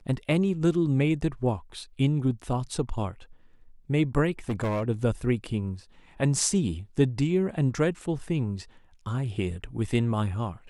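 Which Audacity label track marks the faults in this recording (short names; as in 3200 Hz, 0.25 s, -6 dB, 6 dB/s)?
4.490000	4.840000	clipped -24 dBFS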